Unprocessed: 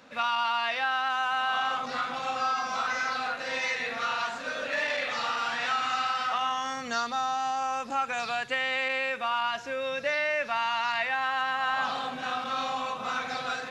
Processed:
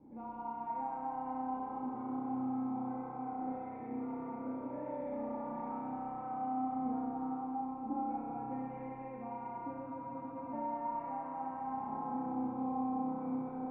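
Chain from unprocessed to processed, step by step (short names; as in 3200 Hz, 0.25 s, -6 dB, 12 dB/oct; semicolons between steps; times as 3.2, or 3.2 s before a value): bell 640 Hz -3.5 dB 0.59 oct; in parallel at -10 dB: requantised 6-bit, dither triangular; on the sum: vocal tract filter u; low shelf 450 Hz +6.5 dB; on a send: delay with a stepping band-pass 0.199 s, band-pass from 820 Hz, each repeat 0.7 oct, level -1.5 dB; on the sum: spring tank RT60 3.3 s, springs 31 ms, chirp 70 ms, DRR -4.5 dB; spectral freeze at 9.89, 0.63 s; gain -1 dB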